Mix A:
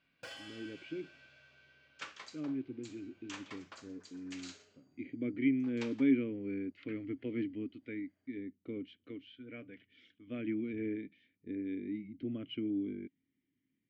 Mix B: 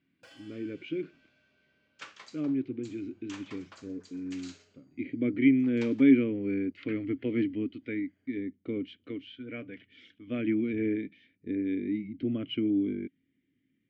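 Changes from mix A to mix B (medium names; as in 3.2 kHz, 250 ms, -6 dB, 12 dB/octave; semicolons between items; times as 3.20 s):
speech +8.0 dB; first sound -7.5 dB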